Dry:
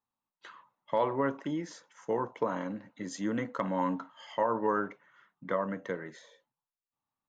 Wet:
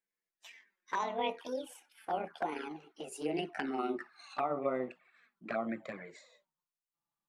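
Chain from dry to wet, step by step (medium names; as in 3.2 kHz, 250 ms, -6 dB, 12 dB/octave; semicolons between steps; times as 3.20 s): pitch bend over the whole clip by +11.5 st ending unshifted; touch-sensitive flanger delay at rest 5.9 ms, full sweep at -28.5 dBFS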